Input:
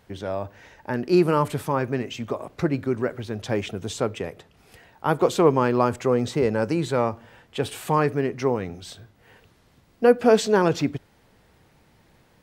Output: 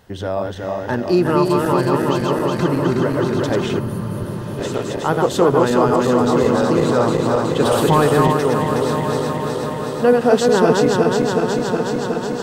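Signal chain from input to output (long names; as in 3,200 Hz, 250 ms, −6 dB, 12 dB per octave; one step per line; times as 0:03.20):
feedback delay that plays each chunk backwards 184 ms, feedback 83%, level −2.5 dB
0:03.79–0:04.59: gain on a spectral selection 230–9,000 Hz −27 dB
in parallel at +2 dB: downward compressor, threshold −23 dBFS, peak gain reduction 12.5 dB
on the sum: notch filter 2,300 Hz, Q 6.3
0:07.60–0:08.33: leveller curve on the samples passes 1
on a send: feedback delay with all-pass diffusion 1,018 ms, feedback 68%, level −14 dB
on the sum: level −1 dB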